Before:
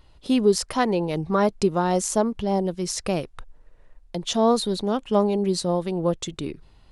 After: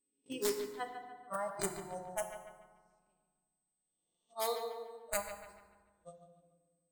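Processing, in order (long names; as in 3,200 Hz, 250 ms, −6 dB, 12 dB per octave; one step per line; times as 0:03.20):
peak hold with a rise ahead of every peak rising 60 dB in 1.27 s
steady tone 8,200 Hz −22 dBFS
noise gate −13 dBFS, range −51 dB
parametric band 2,900 Hz +3.5 dB 0.93 octaves
downward compressor 8 to 1, threshold −39 dBFS, peak gain reduction 24 dB
wrap-around overflow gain 30.5 dB
noise reduction from a noise print of the clip's start 21 dB
on a send: bucket-brigade delay 145 ms, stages 4,096, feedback 38%, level −9 dB
on the sum: feedback delay network reverb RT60 1.5 s, low-frequency decay 1.45×, high-frequency decay 0.55×, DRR 5 dB
level +7.5 dB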